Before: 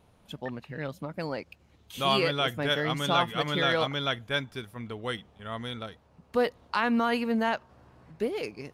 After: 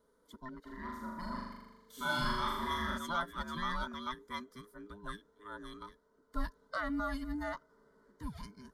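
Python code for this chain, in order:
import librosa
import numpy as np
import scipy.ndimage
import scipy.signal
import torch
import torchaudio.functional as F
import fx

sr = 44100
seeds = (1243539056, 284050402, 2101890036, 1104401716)

y = fx.band_invert(x, sr, width_hz=500)
y = fx.fixed_phaser(y, sr, hz=520.0, stages=8)
y = fx.room_flutter(y, sr, wall_m=6.9, rt60_s=1.1, at=(0.65, 2.97), fade=0.02)
y = y * 10.0 ** (-7.0 / 20.0)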